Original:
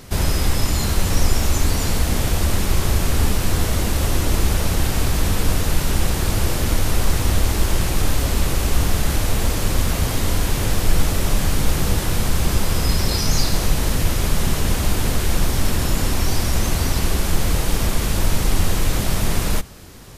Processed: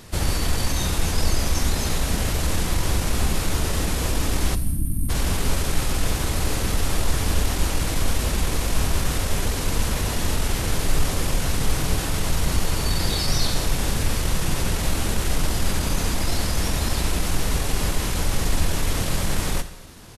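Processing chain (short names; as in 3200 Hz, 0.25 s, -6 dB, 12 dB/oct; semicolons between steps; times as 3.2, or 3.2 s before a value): spectral gain 4.53–5.08, 350–9500 Hz -29 dB; low shelf 340 Hz -2 dB; pitch shift -2 st; non-linear reverb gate 0.3 s falling, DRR 11 dB; gain -2 dB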